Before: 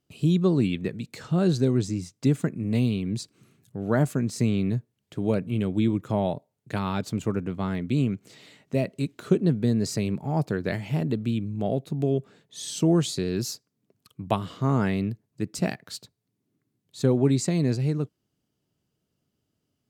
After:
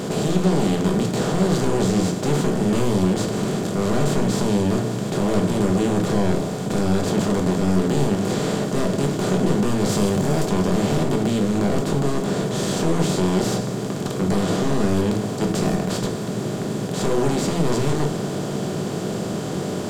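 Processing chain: spectral levelling over time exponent 0.2; 9.89–10.46 s: treble shelf 4.9 kHz +5.5 dB; saturation -14 dBFS, distortion -10 dB; simulated room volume 160 m³, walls furnished, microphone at 1.3 m; trim -4.5 dB

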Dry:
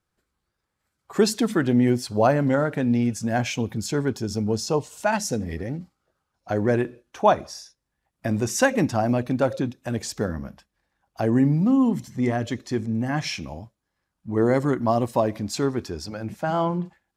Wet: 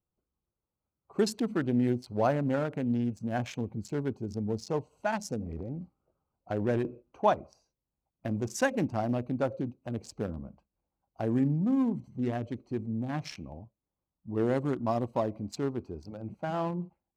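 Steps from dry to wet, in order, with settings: local Wiener filter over 25 samples; 5.45–7.30 s: transient shaper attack +1 dB, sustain +7 dB; trim -7.5 dB

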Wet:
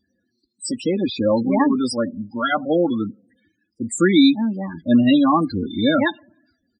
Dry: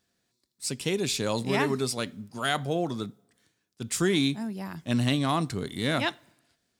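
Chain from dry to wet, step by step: 0.86–1.71 s: treble shelf 2.5 kHz -> 5 kHz -8 dB; loudest bins only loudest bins 16; comb 3.6 ms, depth 99%; trim +8 dB

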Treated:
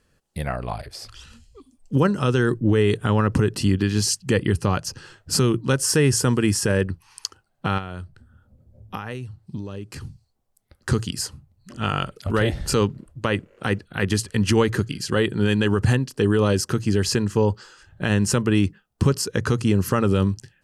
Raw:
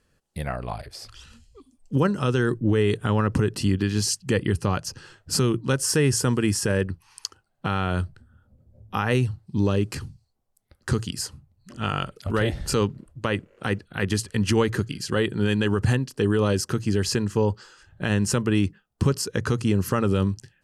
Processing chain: 7.78–10.05 s: compression 12:1, threshold -31 dBFS, peak gain reduction 15.5 dB; trim +2.5 dB

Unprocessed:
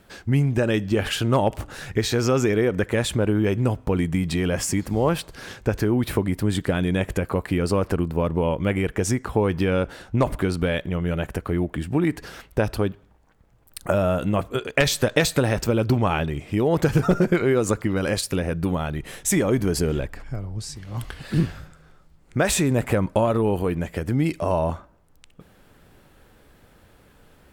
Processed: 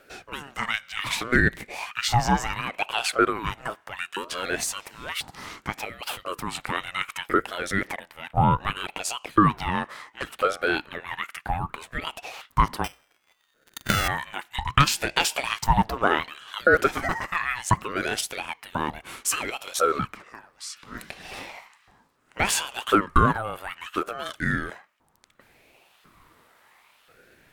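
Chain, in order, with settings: 12.84–14.08 s: sorted samples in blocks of 16 samples; LFO high-pass saw up 0.96 Hz 410–2400 Hz; ring modulator with a swept carrier 650 Hz, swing 50%, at 0.66 Hz; trim +1.5 dB

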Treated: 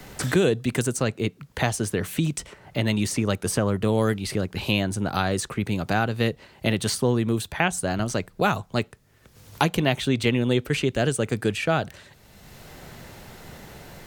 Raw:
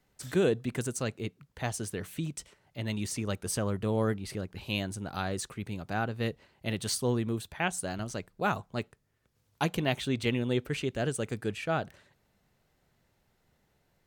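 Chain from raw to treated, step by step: three bands compressed up and down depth 70%; trim +8 dB

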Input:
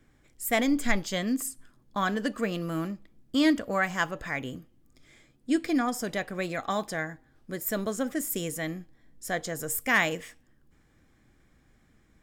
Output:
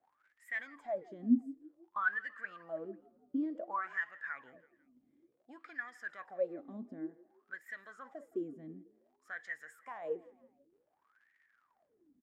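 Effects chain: crackle 100 per s -43 dBFS; peak limiter -21 dBFS, peak gain reduction 9.5 dB; wah-wah 0.55 Hz 240–1900 Hz, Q 19; on a send: frequency-shifting echo 165 ms, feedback 46%, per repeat +31 Hz, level -22 dB; on the sum: trim +8 dB

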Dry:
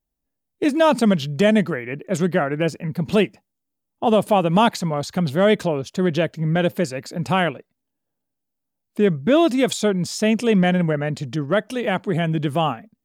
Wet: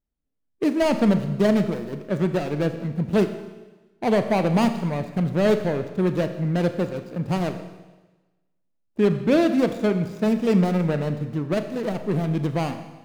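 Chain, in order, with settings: median filter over 41 samples; Schroeder reverb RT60 1.2 s, combs from 27 ms, DRR 8.5 dB; trim -1.5 dB

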